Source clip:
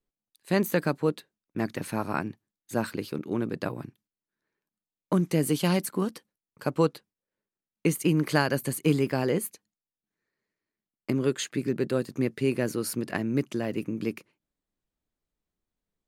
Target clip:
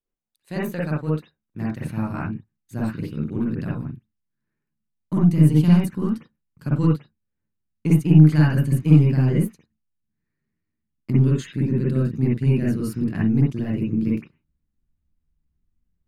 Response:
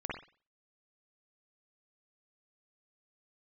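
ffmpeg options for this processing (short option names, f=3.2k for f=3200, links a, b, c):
-filter_complex "[0:a]asubboost=boost=10.5:cutoff=160,aeval=exprs='0.708*(cos(1*acos(clip(val(0)/0.708,-1,1)))-cos(1*PI/2))+0.0224*(cos(6*acos(clip(val(0)/0.708,-1,1)))-cos(6*PI/2))':c=same[a];[1:a]atrim=start_sample=2205,atrim=end_sample=4410[b];[a][b]afir=irnorm=-1:irlink=0,volume=-4dB"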